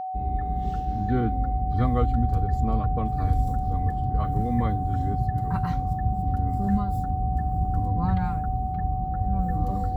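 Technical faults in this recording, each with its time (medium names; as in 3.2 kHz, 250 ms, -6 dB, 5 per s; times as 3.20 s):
whine 750 Hz -29 dBFS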